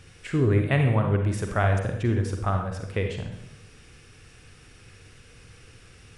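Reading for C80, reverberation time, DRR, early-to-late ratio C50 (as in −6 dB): 8.0 dB, 0.80 s, 3.5 dB, 5.0 dB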